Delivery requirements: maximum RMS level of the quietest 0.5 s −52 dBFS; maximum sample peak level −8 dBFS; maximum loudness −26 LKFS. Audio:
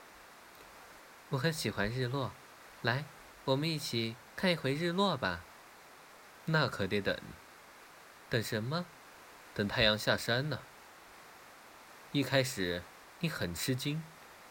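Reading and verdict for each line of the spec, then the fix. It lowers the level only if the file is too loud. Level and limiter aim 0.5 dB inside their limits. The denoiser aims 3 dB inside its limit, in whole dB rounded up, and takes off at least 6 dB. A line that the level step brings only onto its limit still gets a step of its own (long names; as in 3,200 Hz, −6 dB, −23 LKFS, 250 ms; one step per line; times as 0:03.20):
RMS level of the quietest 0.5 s −56 dBFS: in spec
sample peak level −11.5 dBFS: in spec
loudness −34.0 LKFS: in spec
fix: no processing needed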